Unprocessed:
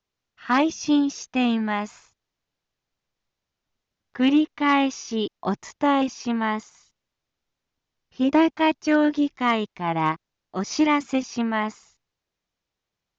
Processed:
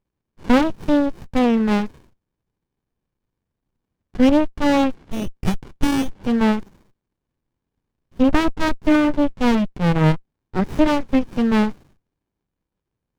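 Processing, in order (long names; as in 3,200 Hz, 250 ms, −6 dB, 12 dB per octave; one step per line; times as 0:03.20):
treble cut that deepens with the level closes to 2,200 Hz, closed at −19.5 dBFS
0:04.94–0:06.24: voice inversion scrambler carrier 3,400 Hz
windowed peak hold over 65 samples
level +8 dB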